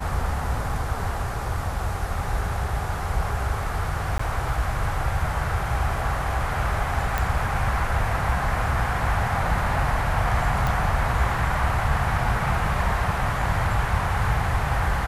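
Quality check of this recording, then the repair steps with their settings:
4.18–4.19 gap 14 ms
7.18 pop
10.67 pop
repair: de-click; interpolate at 4.18, 14 ms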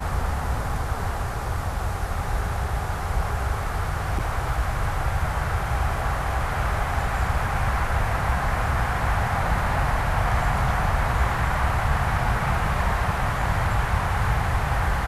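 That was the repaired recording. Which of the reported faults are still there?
none

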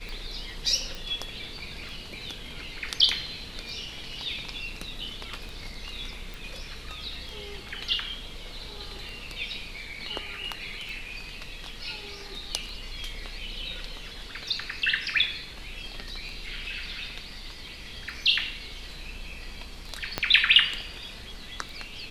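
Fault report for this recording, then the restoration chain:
tick 33 1/3 rpm
0.95 pop
6.34 pop
20.18 pop -10 dBFS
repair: de-click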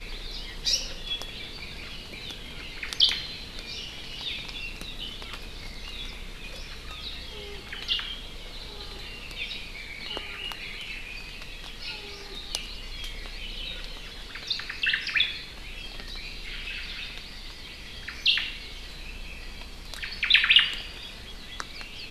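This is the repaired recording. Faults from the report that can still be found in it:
20.18 pop

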